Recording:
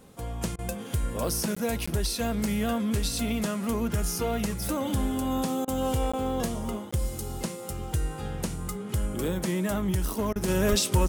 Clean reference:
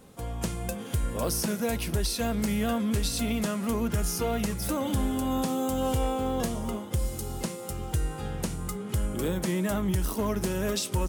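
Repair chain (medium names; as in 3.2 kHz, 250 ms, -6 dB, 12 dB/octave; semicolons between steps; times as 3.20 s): 10.69–10.81 s: high-pass 140 Hz 24 dB/octave; interpolate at 1.55/1.86/6.12/6.91 s, 15 ms; interpolate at 0.56/5.65/10.33 s, 26 ms; trim 0 dB, from 10.48 s -5 dB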